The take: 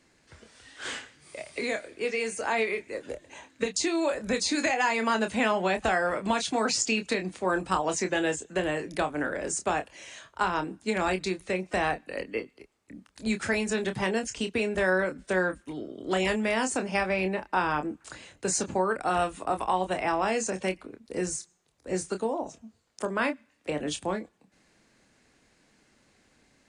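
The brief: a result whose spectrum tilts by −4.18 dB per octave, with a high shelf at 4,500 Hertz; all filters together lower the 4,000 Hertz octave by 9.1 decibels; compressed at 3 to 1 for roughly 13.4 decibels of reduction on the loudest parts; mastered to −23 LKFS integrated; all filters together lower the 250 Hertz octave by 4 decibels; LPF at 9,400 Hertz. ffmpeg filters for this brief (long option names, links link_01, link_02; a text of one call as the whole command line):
ffmpeg -i in.wav -af "lowpass=9400,equalizer=frequency=250:width_type=o:gain=-5.5,equalizer=frequency=4000:width_type=o:gain=-8,highshelf=frequency=4500:gain=-8,acompressor=threshold=-42dB:ratio=3,volume=20dB" out.wav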